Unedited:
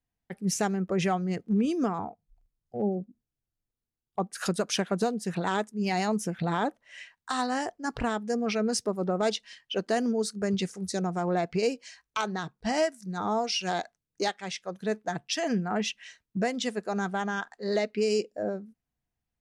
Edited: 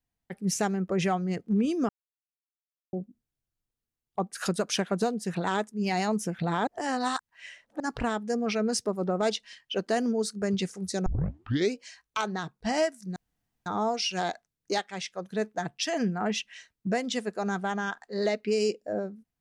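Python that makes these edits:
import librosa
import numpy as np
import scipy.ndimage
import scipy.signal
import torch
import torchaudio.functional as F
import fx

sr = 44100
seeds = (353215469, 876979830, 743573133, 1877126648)

y = fx.edit(x, sr, fx.silence(start_s=1.89, length_s=1.04),
    fx.reverse_span(start_s=6.67, length_s=1.13),
    fx.tape_start(start_s=11.06, length_s=0.7),
    fx.insert_room_tone(at_s=13.16, length_s=0.5), tone=tone)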